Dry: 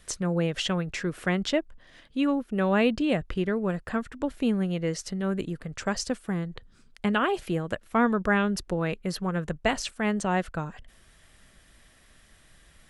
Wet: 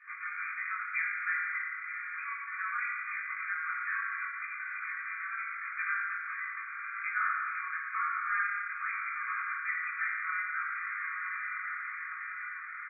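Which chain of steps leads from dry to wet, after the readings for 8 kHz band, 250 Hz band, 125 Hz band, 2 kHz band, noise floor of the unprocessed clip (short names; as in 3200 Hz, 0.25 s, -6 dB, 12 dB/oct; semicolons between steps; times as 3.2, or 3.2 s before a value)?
under -40 dB, under -40 dB, under -40 dB, +3.0 dB, -58 dBFS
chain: block floating point 3-bit; on a send: diffused feedback echo 1.05 s, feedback 57%, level -15 dB; on the sum: compressor 5:1, threshold -34 dBFS, peak gain reduction 15 dB; FFT band-pass 1100–2500 Hz; doubler 19 ms -3.5 dB; FDN reverb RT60 1.7 s, high-frequency decay 0.5×, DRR -7 dB; in parallel at -3 dB: limiter -33.5 dBFS, peak gain reduction 12 dB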